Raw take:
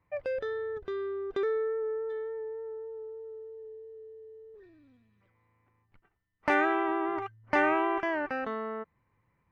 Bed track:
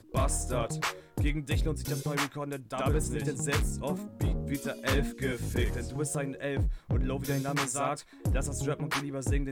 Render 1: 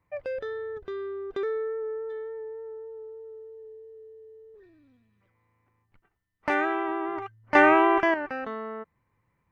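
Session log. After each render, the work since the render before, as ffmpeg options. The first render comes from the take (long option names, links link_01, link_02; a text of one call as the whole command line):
ffmpeg -i in.wav -filter_complex "[0:a]asplit=3[link_01][link_02][link_03];[link_01]atrim=end=7.552[link_04];[link_02]atrim=start=7.548:end=8.142,asetpts=PTS-STARTPTS,volume=8dB[link_05];[link_03]atrim=start=8.138[link_06];[link_04][link_05]acrossfade=duration=0.004:curve1=hsin:curve2=hsin[link_07];[link_07][link_06]acrossfade=duration=0.004:curve1=hsin:curve2=hsin" out.wav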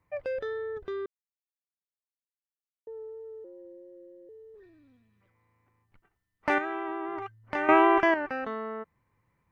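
ffmpeg -i in.wav -filter_complex "[0:a]asettb=1/sr,asplit=3[link_01][link_02][link_03];[link_01]atrim=end=3.444[link_04];[link_02]atrim=start=3.44:end=4.29,asetpts=PTS-STARTPTS,afade=type=in:duration=0.004:curve=qsin,afade=type=out:start_time=0.846:duration=0.004:curve=qsin,aeval=exprs='val(0)*sin(2*PI*91*n/s)':channel_layout=same[link_05];[link_03]atrim=start=4.286[link_06];[link_04][link_05]acrossfade=duration=0.004:curve1=hsin:curve2=qsin[link_07];[link_07][link_06]acrossfade=duration=0.004:curve1=qsin:curve2=hsin,asettb=1/sr,asplit=3[link_08][link_09][link_10];[link_08]atrim=end=6.584[link_11];[link_09]atrim=start=6.58:end=7.69,asetpts=PTS-STARTPTS,afade=type=in:duration=0.004:curve=qsin,afade=type=out:start_time=1.106:duration=0.004:curve=qsin,acompressor=threshold=-32dB:ratio=2.5:attack=3.2:release=140:knee=1:detection=peak[link_12];[link_10]atrim=start=7.686[link_13];[link_11][link_12]acrossfade=duration=0.004:curve1=hsin:curve2=qsin[link_14];[link_14][link_13]acrossfade=duration=0.004:curve1=qsin:curve2=hsin,asplit=3[link_15][link_16][link_17];[link_15]atrim=end=1.06,asetpts=PTS-STARTPTS,afade=type=out:start_time=1.056:duration=0.004:curve=hsin[link_18];[link_16]atrim=start=1.06:end=2.87,asetpts=PTS-STARTPTS,volume=0[link_19];[link_17]atrim=start=2.87,asetpts=PTS-STARTPTS,afade=type=in:duration=0.004:curve=hsin[link_20];[link_18][link_19][link_20]concat=n=3:v=0:a=1" out.wav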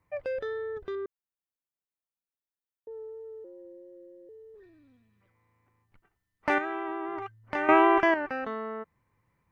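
ffmpeg -i in.wav -filter_complex "[0:a]asettb=1/sr,asplit=3[link_01][link_02][link_03];[link_01]atrim=end=0.954[link_04];[link_02]atrim=start=0.95:end=2.91,asetpts=PTS-STARTPTS,afade=type=in:duration=0.004:curve=qsin,afade=type=out:start_time=1.956:duration=0.004:curve=qsin,equalizer=frequency=5300:width_type=o:width=1.9:gain=-14[link_05];[link_03]atrim=start=2.906[link_06];[link_04][link_05]acrossfade=duration=0.004:curve1=hsin:curve2=qsin[link_07];[link_07][link_06]acrossfade=duration=0.004:curve1=qsin:curve2=hsin" out.wav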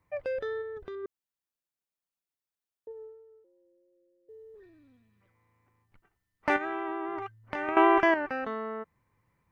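ffmpeg -i in.wav -filter_complex "[0:a]asplit=3[link_01][link_02][link_03];[link_01]afade=type=out:start_time=0.61:duration=0.02[link_04];[link_02]acompressor=threshold=-36dB:ratio=6:attack=3.2:release=140:knee=1:detection=peak,afade=type=in:start_time=0.61:duration=0.02,afade=type=out:start_time=1.03:duration=0.02[link_05];[link_03]afade=type=in:start_time=1.03:duration=0.02[link_06];[link_04][link_05][link_06]amix=inputs=3:normalize=0,asplit=3[link_07][link_08][link_09];[link_07]afade=type=out:start_time=2.91:duration=0.02[link_10];[link_08]agate=range=-19dB:threshold=-42dB:ratio=16:release=100:detection=peak,afade=type=in:start_time=2.91:duration=0.02,afade=type=out:start_time=4.28:duration=0.02[link_11];[link_09]afade=type=in:start_time=4.28:duration=0.02[link_12];[link_10][link_11][link_12]amix=inputs=3:normalize=0,asettb=1/sr,asplit=3[link_13][link_14][link_15];[link_13]atrim=end=6.564[link_16];[link_14]atrim=start=6.56:end=7.77,asetpts=PTS-STARTPTS,afade=type=in:duration=0.004:curve=qsin,afade=type=out:start_time=1.206:duration=0.004:curve=qsin,acompressor=threshold=-28dB:ratio=6:attack=3.2:release=140:knee=1:detection=peak[link_17];[link_15]atrim=start=7.766[link_18];[link_16][link_17]acrossfade=duration=0.004:curve1=hsin:curve2=qsin[link_19];[link_19][link_18]acrossfade=duration=0.004:curve1=qsin:curve2=hsin" out.wav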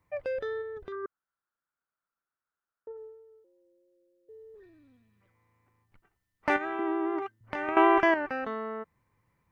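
ffmpeg -i in.wav -filter_complex "[0:a]asettb=1/sr,asplit=3[link_01][link_02][link_03];[link_01]atrim=end=0.924[link_04];[link_02]atrim=start=0.92:end=2.97,asetpts=PTS-STARTPTS,afade=type=in:duration=0.004:curve=qsin,afade=type=out:start_time=2.046:duration=0.004:curve=qsin,lowpass=frequency=1400:width_type=q:width=6.1[link_05];[link_03]atrim=start=2.966[link_06];[link_04][link_05]acrossfade=duration=0.004:curve1=hsin:curve2=qsin[link_07];[link_07][link_06]acrossfade=duration=0.004:curve1=qsin:curve2=hsin,asettb=1/sr,asplit=3[link_08][link_09][link_10];[link_08]atrim=end=6.794[link_11];[link_09]atrim=start=6.79:end=7.41,asetpts=PTS-STARTPTS,afade=type=in:duration=0.004:curve=qsin,afade=type=out:start_time=0.616:duration=0.004:curve=qsin,highpass=frequency=280:width_type=q:width=2.6[link_12];[link_10]atrim=start=7.406[link_13];[link_11][link_12]acrossfade=duration=0.004:curve1=hsin:curve2=qsin[link_14];[link_14][link_13]acrossfade=duration=0.004:curve1=qsin:curve2=hsin" out.wav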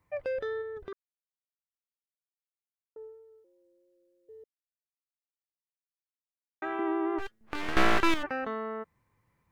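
ffmpeg -i in.wav -filter_complex "[0:a]asplit=3[link_01][link_02][link_03];[link_01]afade=type=out:start_time=7.18:duration=0.02[link_04];[link_02]aeval=exprs='abs(val(0))':channel_layout=same,afade=type=in:start_time=7.18:duration=0.02,afade=type=out:start_time=8.22:duration=0.02[link_05];[link_03]afade=type=in:start_time=8.22:duration=0.02[link_06];[link_04][link_05][link_06]amix=inputs=3:normalize=0,asplit=5[link_07][link_08][link_09][link_10][link_11];[link_07]atrim=end=0.93,asetpts=PTS-STARTPTS,afade=type=out:start_time=0.926:duration=0.004:curve=hsin[link_12];[link_08]atrim=start=0.93:end=2.96,asetpts=PTS-STARTPTS,volume=0[link_13];[link_09]atrim=start=2.96:end=4.44,asetpts=PTS-STARTPTS,afade=type=in:duration=0.004:curve=hsin,afade=type=out:start_time=1.476:duration=0.004:curve=hsin[link_14];[link_10]atrim=start=4.44:end=6.62,asetpts=PTS-STARTPTS,volume=0[link_15];[link_11]atrim=start=6.62,asetpts=PTS-STARTPTS,afade=type=in:duration=0.004:curve=hsin[link_16];[link_12][link_13][link_14][link_15][link_16]concat=n=5:v=0:a=1" out.wav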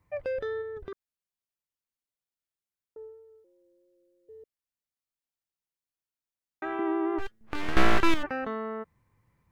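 ffmpeg -i in.wav -af "lowshelf=frequency=210:gain=6.5" out.wav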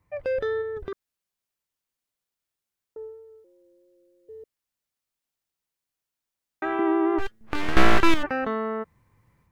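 ffmpeg -i in.wav -af "dynaudnorm=framelen=160:gausssize=3:maxgain=6dB" out.wav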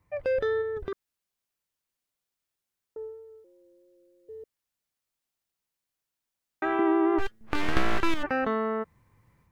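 ffmpeg -i in.wav -af "acompressor=threshold=-18dB:ratio=6" out.wav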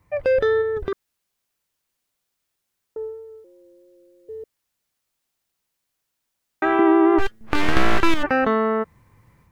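ffmpeg -i in.wav -af "volume=8dB,alimiter=limit=-1dB:level=0:latency=1" out.wav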